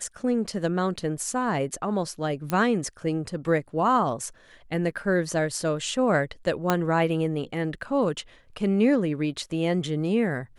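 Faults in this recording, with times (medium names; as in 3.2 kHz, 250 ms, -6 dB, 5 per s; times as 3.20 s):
2.50 s: pop -13 dBFS
6.70 s: pop -7 dBFS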